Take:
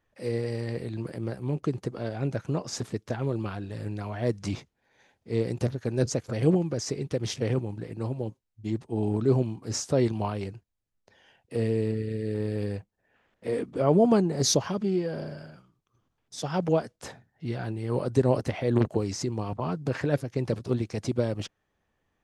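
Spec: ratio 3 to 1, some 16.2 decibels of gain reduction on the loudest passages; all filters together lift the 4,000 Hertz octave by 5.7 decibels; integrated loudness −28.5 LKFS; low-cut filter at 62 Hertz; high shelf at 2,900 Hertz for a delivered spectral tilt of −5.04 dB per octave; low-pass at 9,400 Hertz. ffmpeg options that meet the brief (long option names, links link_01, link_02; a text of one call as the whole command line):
ffmpeg -i in.wav -af "highpass=62,lowpass=9400,highshelf=frequency=2900:gain=5,equalizer=frequency=4000:width_type=o:gain=3,acompressor=threshold=-39dB:ratio=3,volume=12dB" out.wav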